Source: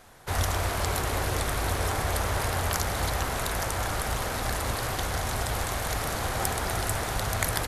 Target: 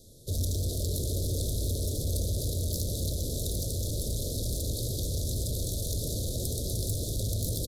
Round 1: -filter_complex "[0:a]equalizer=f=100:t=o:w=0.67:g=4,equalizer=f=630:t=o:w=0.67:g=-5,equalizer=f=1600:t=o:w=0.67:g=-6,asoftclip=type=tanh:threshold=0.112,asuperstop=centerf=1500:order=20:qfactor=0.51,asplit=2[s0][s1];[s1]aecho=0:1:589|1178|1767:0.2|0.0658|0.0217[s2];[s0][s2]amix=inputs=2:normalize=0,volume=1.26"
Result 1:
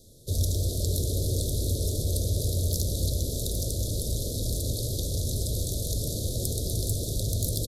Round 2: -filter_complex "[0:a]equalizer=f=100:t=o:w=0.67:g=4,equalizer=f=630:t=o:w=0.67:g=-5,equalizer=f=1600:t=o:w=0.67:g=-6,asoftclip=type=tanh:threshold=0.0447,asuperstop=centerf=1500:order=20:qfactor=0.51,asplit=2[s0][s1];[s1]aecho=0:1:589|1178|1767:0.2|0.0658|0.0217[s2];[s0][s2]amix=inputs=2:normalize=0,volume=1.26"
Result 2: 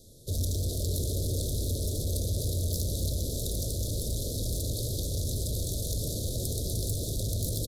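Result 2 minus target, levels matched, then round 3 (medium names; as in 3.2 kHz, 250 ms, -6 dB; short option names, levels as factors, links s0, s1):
echo 223 ms early
-filter_complex "[0:a]equalizer=f=100:t=o:w=0.67:g=4,equalizer=f=630:t=o:w=0.67:g=-5,equalizer=f=1600:t=o:w=0.67:g=-6,asoftclip=type=tanh:threshold=0.0447,asuperstop=centerf=1500:order=20:qfactor=0.51,asplit=2[s0][s1];[s1]aecho=0:1:812|1624|2436:0.2|0.0658|0.0217[s2];[s0][s2]amix=inputs=2:normalize=0,volume=1.26"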